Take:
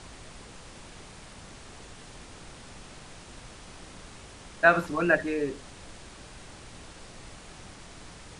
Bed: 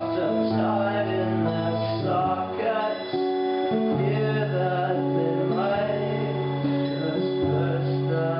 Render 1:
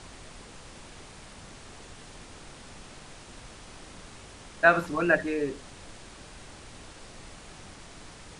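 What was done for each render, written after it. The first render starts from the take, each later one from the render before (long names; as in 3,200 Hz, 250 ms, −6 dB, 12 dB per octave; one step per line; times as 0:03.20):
hum removal 60 Hz, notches 3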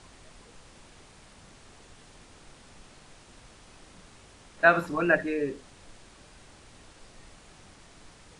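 noise reduction from a noise print 6 dB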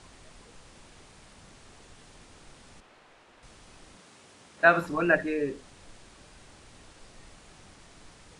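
0:02.80–0:03.43: bass and treble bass −13 dB, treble −13 dB
0:03.96–0:04.79: high-pass filter 210 Hz → 80 Hz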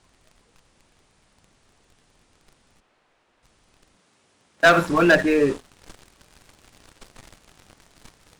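speech leveller 2 s
leveller curve on the samples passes 3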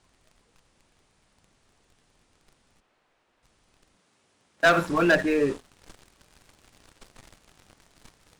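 level −4.5 dB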